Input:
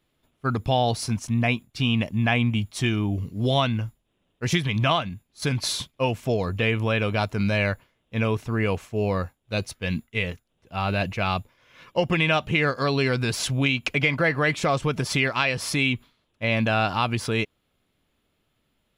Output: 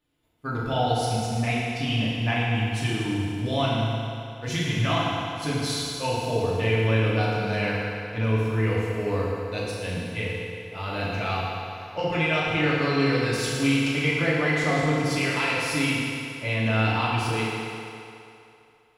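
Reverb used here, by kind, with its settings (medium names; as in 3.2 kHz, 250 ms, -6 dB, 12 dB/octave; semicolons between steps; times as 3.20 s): FDN reverb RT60 2.8 s, low-frequency decay 0.7×, high-frequency decay 0.85×, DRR -7.5 dB; trim -9 dB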